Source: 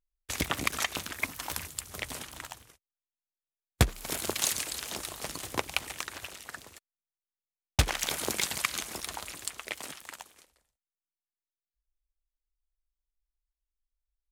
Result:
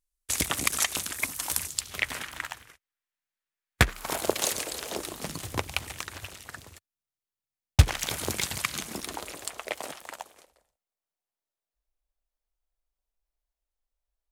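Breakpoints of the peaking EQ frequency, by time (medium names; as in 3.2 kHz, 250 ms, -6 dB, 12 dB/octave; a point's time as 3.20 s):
peaking EQ +11 dB 1.5 oct
1.62 s 9.4 kHz
2.06 s 1.8 kHz
3.88 s 1.8 kHz
4.33 s 500 Hz
4.93 s 500 Hz
5.50 s 92 Hz
8.57 s 92 Hz
9.44 s 630 Hz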